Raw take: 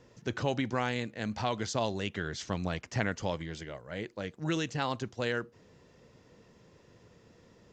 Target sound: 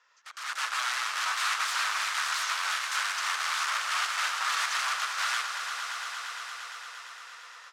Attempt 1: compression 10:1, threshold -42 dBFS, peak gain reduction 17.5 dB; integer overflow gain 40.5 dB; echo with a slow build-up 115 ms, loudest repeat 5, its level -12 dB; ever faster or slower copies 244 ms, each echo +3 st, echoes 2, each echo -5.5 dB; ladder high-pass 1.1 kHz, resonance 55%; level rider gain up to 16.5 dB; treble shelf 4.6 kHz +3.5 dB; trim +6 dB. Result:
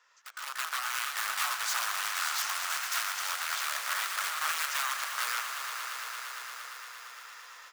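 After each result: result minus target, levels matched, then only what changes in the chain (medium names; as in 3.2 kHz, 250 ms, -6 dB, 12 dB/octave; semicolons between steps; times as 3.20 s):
compression: peak gain reduction +6 dB; 8 kHz band +2.5 dB
change: compression 10:1, threshold -35.5 dBFS, peak gain reduction 12 dB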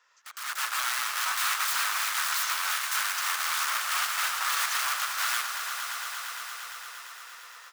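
8 kHz band +2.5 dB
add after level rider: low-pass 6.7 kHz 12 dB/octave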